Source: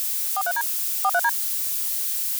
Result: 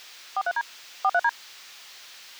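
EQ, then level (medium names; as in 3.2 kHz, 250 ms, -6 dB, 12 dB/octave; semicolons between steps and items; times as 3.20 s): distance through air 220 m; 0.0 dB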